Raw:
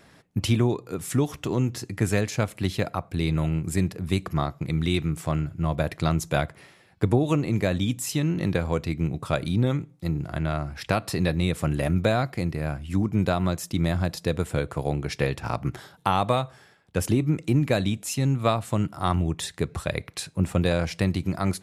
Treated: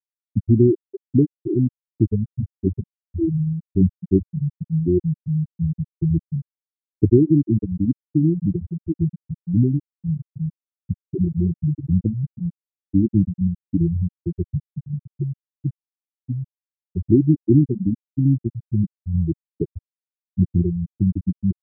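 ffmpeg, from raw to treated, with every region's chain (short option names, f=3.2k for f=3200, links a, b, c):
-filter_complex "[0:a]asettb=1/sr,asplit=3[a][b][c];[a]atrim=end=2.304[d];[b]atrim=start=2.3:end=4.51,asetpts=PTS-STARTPTS,afade=t=in:d=0.004:c=qsin,afade=t=out:st=2.206:d=0.004:c=qsin,bandreject=f=50:t=h:w=6,bandreject=f=100:t=h:w=6,bandreject=f=150:t=h:w=6,bandreject=f=200:t=h:w=6,bandreject=f=250:t=h:w=6,bandreject=f=300:t=h:w=6,bandreject=f=350:t=h:w=6,asplit=2[e][f];[f]adelay=21,volume=-6.5dB[g];[e][g]amix=inputs=2:normalize=0,atrim=end_sample=97461[h];[c]atrim=start=4.506[i];[d][h]acrossfade=d=0.004:c1=hsin:c2=qsin[j];[j][i]acrossfade=d=0.004:c1=qsin:c2=hsin,lowshelf=f=440:t=q:w=3:g=6.5,afftfilt=real='re*gte(hypot(re,im),1)':imag='im*gte(hypot(re,im),1)':win_size=1024:overlap=0.75,volume=-1dB"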